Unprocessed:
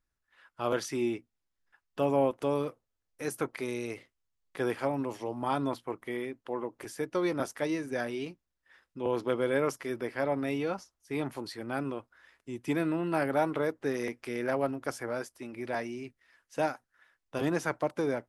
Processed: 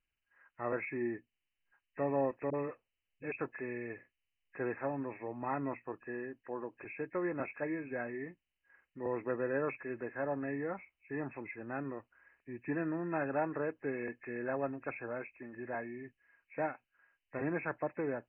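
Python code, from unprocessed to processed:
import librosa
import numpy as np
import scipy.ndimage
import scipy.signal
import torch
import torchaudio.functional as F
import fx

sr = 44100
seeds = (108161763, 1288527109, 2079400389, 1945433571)

y = fx.freq_compress(x, sr, knee_hz=1600.0, ratio=4.0)
y = fx.dispersion(y, sr, late='highs', ms=41.0, hz=370.0, at=(2.5, 3.32))
y = y * 10.0 ** (-6.0 / 20.0)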